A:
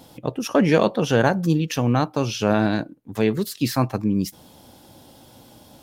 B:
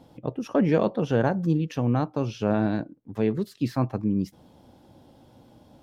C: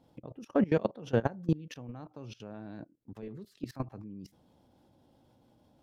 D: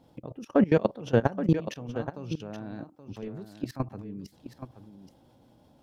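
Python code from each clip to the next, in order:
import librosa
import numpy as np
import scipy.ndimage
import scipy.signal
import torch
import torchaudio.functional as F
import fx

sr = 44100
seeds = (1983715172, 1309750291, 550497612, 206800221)

y1 = fx.lowpass(x, sr, hz=3200.0, slope=6)
y1 = fx.tilt_shelf(y1, sr, db=3.5, hz=970.0)
y1 = y1 * librosa.db_to_amplitude(-6.5)
y2 = fx.level_steps(y1, sr, step_db=21)
y2 = y2 * librosa.db_to_amplitude(-2.0)
y3 = y2 + 10.0 ** (-10.5 / 20.0) * np.pad(y2, (int(825 * sr / 1000.0), 0))[:len(y2)]
y3 = y3 * librosa.db_to_amplitude(5.0)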